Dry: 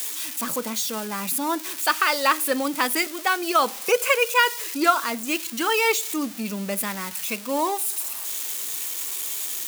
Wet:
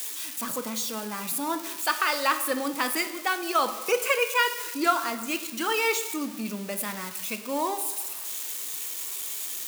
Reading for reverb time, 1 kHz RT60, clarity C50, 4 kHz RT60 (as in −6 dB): 1.1 s, 1.1 s, 11.0 dB, 0.70 s